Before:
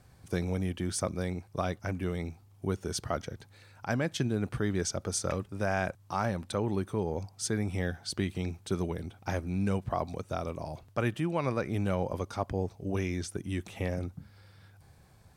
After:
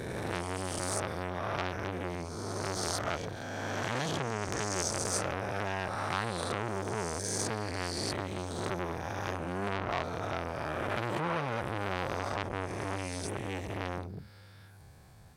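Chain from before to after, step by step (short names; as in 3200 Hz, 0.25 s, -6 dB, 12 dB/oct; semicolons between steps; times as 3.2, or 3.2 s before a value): spectral swells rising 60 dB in 2.03 s; core saturation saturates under 3700 Hz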